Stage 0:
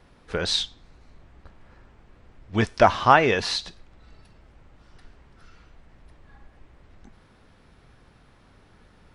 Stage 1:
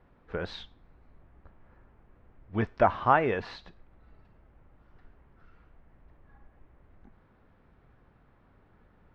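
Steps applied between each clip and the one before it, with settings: low-pass 1.8 kHz 12 dB/octave; trim -6 dB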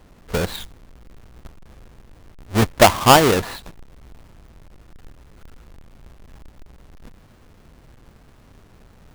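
square wave that keeps the level; trim +7.5 dB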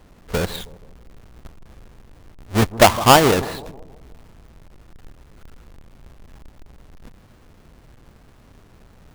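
bucket-brigade echo 159 ms, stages 1024, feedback 47%, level -16 dB

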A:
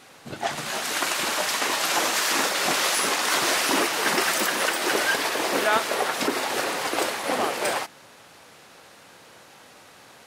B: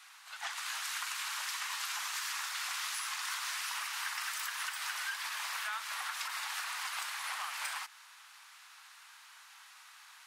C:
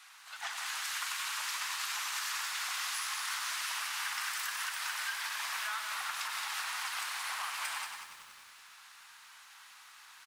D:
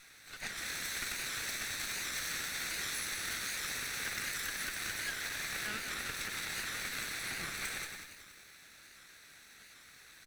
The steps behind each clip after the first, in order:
steep high-pass 980 Hz 36 dB/octave; compression, threshold -31 dBFS, peak gain reduction 11.5 dB; trim -4.5 dB
delay 177 ms -7.5 dB; bit-crushed delay 94 ms, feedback 80%, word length 9-bit, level -10.5 dB
comb filter that takes the minimum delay 0.51 ms; warped record 78 rpm, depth 100 cents

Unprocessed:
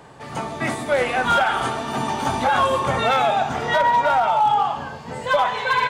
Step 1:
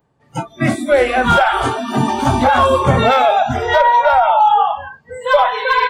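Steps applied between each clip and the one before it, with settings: spectral noise reduction 28 dB; bass shelf 430 Hz +10.5 dB; trim +4 dB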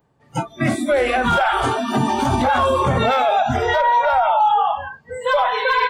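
peak limiter -9.5 dBFS, peak gain reduction 7.5 dB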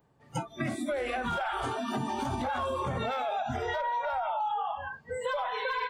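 compression 4:1, threshold -27 dBFS, peak gain reduction 12 dB; trim -4 dB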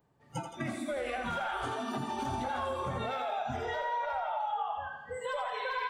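thinning echo 84 ms, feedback 63%, high-pass 320 Hz, level -6.5 dB; trim -4 dB

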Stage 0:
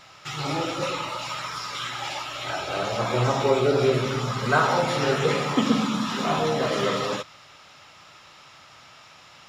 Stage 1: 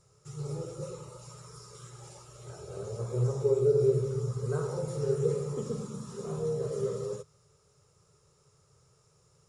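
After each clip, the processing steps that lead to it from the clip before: FFT filter 150 Hz 0 dB, 280 Hz -24 dB, 420 Hz +3 dB, 690 Hz -22 dB, 1.2 kHz -19 dB, 1.9 kHz -28 dB, 3.3 kHz -29 dB, 9.3 kHz +2 dB, 14 kHz -23 dB; trim -2.5 dB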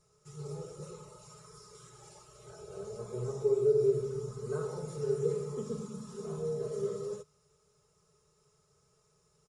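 comb 4.7 ms, depth 66%; trim -5.5 dB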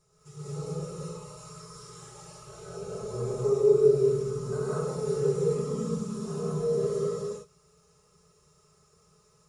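gated-style reverb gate 240 ms rising, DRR -6.5 dB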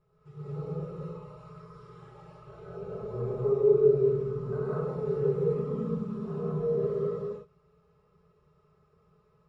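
distance through air 450 m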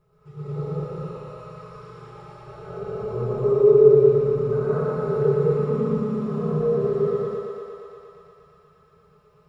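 thinning echo 117 ms, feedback 84%, high-pass 260 Hz, level -3.5 dB; trim +6 dB

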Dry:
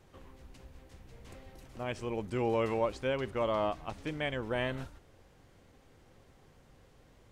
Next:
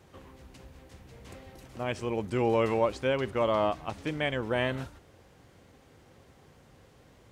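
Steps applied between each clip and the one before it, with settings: high-pass 60 Hz; trim +4.5 dB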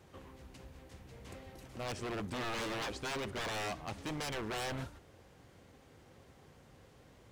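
wavefolder -30.5 dBFS; trim -2.5 dB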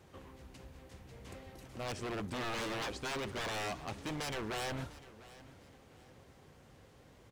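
feedback delay 699 ms, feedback 33%, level -18.5 dB

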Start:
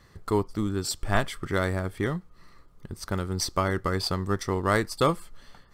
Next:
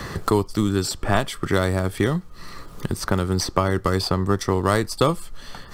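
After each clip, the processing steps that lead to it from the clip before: band-stop 2.1 kHz, Q 21; dynamic bell 1.7 kHz, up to -4 dB, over -38 dBFS, Q 1.7; three bands compressed up and down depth 70%; trim +6 dB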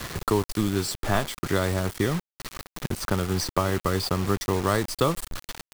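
bit crusher 5-bit; trim -4 dB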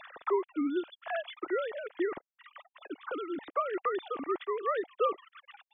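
formants replaced by sine waves; trim -8 dB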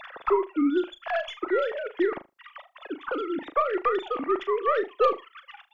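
tracing distortion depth 0.04 ms; on a send: flutter echo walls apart 6.6 m, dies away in 0.21 s; on the sum: trim +6.5 dB

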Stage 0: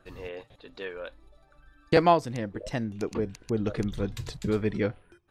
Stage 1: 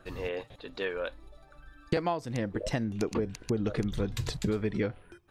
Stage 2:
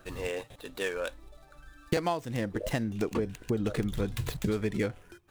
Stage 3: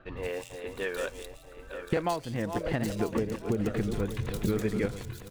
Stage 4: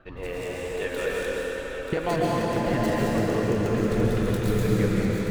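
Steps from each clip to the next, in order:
compression 10:1, threshold -30 dBFS, peak gain reduction 16 dB; trim +4.5 dB
median filter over 9 samples; treble shelf 3.7 kHz +11.5 dB
backward echo that repeats 465 ms, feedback 55%, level -7 dB; bands offset in time lows, highs 170 ms, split 3.4 kHz
algorithmic reverb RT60 4.7 s, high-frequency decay 0.8×, pre-delay 95 ms, DRR -6 dB

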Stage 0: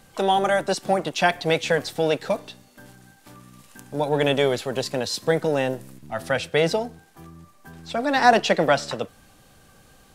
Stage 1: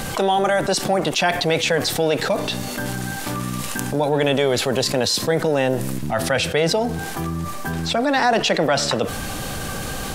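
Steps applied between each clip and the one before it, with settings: level flattener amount 70%; trim -4.5 dB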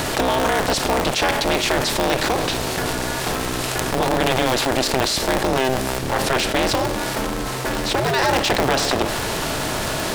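spectral levelling over time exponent 0.6; polarity switched at an audio rate 130 Hz; trim -3.5 dB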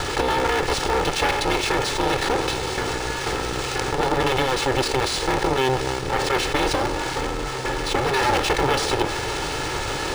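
comb filter that takes the minimum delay 2.3 ms; decimation joined by straight lines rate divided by 3×

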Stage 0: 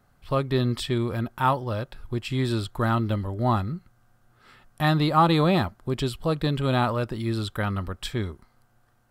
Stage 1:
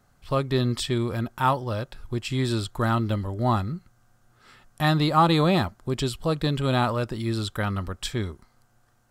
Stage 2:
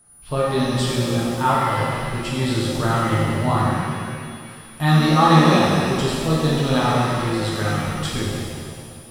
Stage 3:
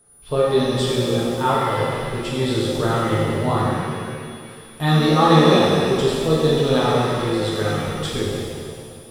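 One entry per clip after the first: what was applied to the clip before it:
peaking EQ 6.7 kHz +6.5 dB 1 oct
whistle 9.7 kHz -51 dBFS; pitch-shifted reverb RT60 2.1 s, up +7 st, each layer -8 dB, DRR -6 dB; trim -2 dB
small resonant body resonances 440/3500 Hz, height 11 dB, ringing for 25 ms; trim -2 dB

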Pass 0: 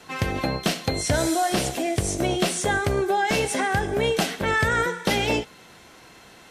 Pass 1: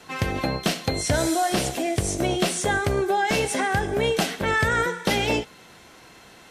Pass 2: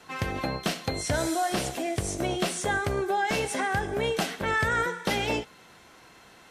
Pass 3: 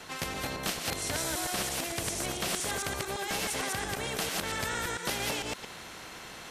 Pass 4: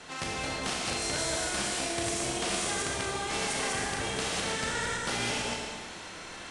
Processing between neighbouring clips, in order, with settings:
no audible change
peaking EQ 1.2 kHz +3 dB 1.4 oct; trim -5.5 dB
chunks repeated in reverse 113 ms, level -0.5 dB; spectrum-flattening compressor 2:1; trim -7 dB
Schroeder reverb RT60 1.4 s, combs from 26 ms, DRR -1.5 dB; resampled via 22.05 kHz; trim -2 dB

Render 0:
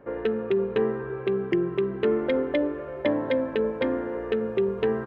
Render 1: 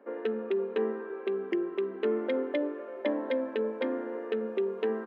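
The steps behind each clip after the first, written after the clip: elliptic high-pass 220 Hz, stop band 40 dB; trim -5 dB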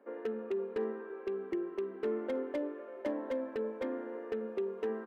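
slew-rate limiter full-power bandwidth 40 Hz; trim -5.5 dB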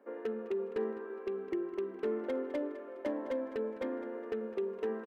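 feedback delay 206 ms, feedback 38%, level -15.5 dB

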